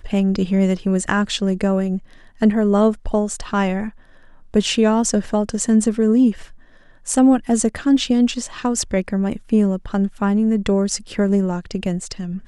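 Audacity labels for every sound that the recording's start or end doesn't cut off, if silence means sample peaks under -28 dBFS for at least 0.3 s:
2.420000	3.890000	sound
4.540000	6.440000	sound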